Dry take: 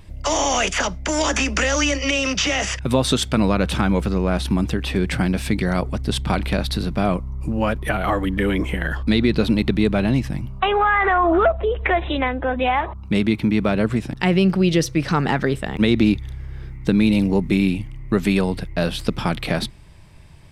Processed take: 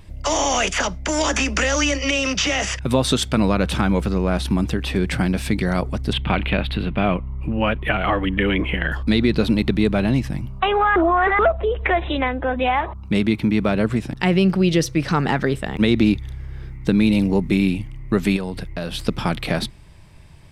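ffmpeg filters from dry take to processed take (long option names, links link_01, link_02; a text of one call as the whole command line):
ffmpeg -i in.wav -filter_complex "[0:a]asettb=1/sr,asplit=3[link_01][link_02][link_03];[link_01]atrim=end=6.134[link_04];[link_02]atrim=start=6.13:end=8.92,asetpts=PTS-STARTPTS,afade=type=in:duration=0.004:curve=qsin,afade=type=out:start_time=2.786:duration=0.004:curve=qsin,highshelf=frequency=4200:width_type=q:width=3:gain=-13.5[link_05];[link_03]atrim=start=8.916[link_06];[link_04][link_05]acrossfade=duration=0.004:curve1=hsin:curve2=qsin[link_07];[link_07][link_06]acrossfade=duration=0.004:curve1=qsin:curve2=hsin,asettb=1/sr,asplit=3[link_08][link_09][link_10];[link_08]atrim=end=18.364[link_11];[link_09]atrim=start=18.36:end=18.94,asetpts=PTS-STARTPTS,afade=type=in:duration=0.004:curve=qsin,afade=type=out:start_time=0.576:duration=0.004:curve=qsin,acompressor=threshold=-24dB:ratio=3:attack=3.2:release=140:knee=1:detection=peak[link_12];[link_10]atrim=start=18.936[link_13];[link_11][link_12]acrossfade=duration=0.004:curve1=hsin:curve2=qsin[link_14];[link_14][link_13]acrossfade=duration=0.004:curve1=qsin:curve2=hsin,asplit=3[link_15][link_16][link_17];[link_15]atrim=end=10.962[link_18];[link_16]atrim=start=10.958:end=11.392,asetpts=PTS-STARTPTS,areverse[link_19];[link_17]atrim=start=11.388[link_20];[link_18][link_19]acrossfade=duration=0.004:curve1=hsin:curve2=hsin[link_21];[link_21][link_20]acrossfade=duration=0.004:curve1=hsin:curve2=hsin" out.wav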